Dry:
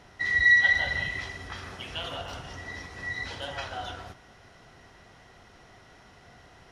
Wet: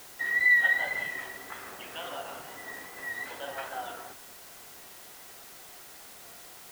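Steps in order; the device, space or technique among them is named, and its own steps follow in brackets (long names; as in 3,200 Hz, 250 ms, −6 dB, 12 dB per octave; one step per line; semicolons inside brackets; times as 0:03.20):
wax cylinder (band-pass filter 310–2,100 Hz; tape wow and flutter; white noise bed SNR 16 dB)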